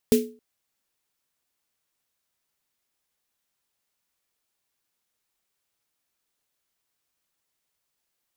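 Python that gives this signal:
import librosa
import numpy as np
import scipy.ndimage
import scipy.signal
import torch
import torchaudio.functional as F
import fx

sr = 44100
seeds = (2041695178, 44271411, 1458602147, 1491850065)

y = fx.drum_snare(sr, seeds[0], length_s=0.27, hz=240.0, second_hz=430.0, noise_db=-10, noise_from_hz=2100.0, decay_s=0.36, noise_decay_s=0.25)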